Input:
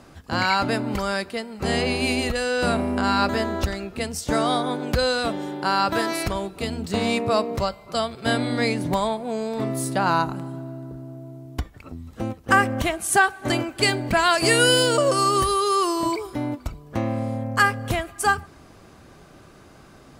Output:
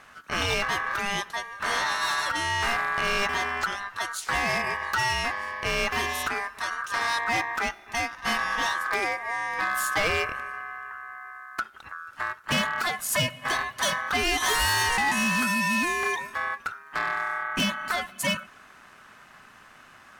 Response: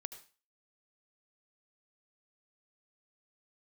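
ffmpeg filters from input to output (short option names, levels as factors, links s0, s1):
-filter_complex "[0:a]asettb=1/sr,asplit=3[s0][s1][s2];[s0]atrim=end=9.584[s3];[s1]atrim=start=9.58:end=10.08,asetpts=PTS-STARTPTS,afade=t=in:d=0.004:c=qsin,afade=t=out:st=0.496:d=0.004:c=qsin,aecho=1:1:6.5:0.87,atrim=end_sample=22050[s4];[s2]atrim=start=10.076[s5];[s3][s4]acrossfade=d=0.004:c1=hsin:c2=qsin[s6];[s6][s5]acrossfade=d=0.004:c1=qsin:c2=hsin,aeval=exprs='val(0)*sin(2*PI*1400*n/s)':c=same,asoftclip=type=hard:threshold=0.106"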